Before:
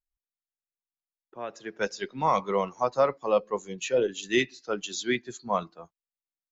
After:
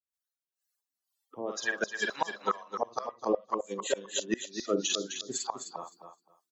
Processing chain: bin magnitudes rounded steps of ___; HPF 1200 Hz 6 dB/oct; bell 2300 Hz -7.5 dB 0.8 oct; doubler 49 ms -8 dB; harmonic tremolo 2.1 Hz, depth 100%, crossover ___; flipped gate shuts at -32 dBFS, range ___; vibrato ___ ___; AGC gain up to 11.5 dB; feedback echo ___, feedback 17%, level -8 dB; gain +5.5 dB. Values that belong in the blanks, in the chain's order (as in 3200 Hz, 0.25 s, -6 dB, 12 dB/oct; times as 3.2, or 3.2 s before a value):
30 dB, 550 Hz, -28 dB, 0.59 Hz, 92 cents, 0.259 s